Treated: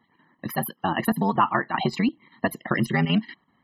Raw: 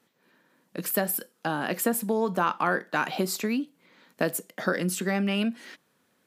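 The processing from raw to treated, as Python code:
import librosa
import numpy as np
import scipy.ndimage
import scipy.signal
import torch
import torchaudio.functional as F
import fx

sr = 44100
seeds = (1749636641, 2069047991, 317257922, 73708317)

y = scipy.signal.medfilt(x, 5)
y = y + 0.65 * np.pad(y, (int(1.0 * sr / 1000.0), 0))[:len(y)]
y = fx.spec_topn(y, sr, count=64)
y = fx.chopper(y, sr, hz=3.0, depth_pct=60, duty_pct=80)
y = fx.stretch_grains(y, sr, factor=0.58, grain_ms=22.0)
y = F.gain(torch.from_numpy(y), 5.5).numpy()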